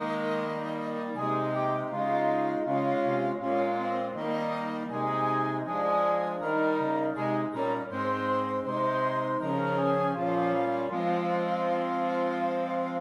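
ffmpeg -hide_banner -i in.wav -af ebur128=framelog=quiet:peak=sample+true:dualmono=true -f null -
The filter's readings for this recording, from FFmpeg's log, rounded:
Integrated loudness:
  I:         -25.9 LUFS
  Threshold: -35.9 LUFS
Loudness range:
  LRA:         0.9 LU
  Threshold: -45.7 LUFS
  LRA low:   -26.2 LUFS
  LRA high:  -25.3 LUFS
Sample peak:
  Peak:      -15.0 dBFS
True peak:
  Peak:      -15.0 dBFS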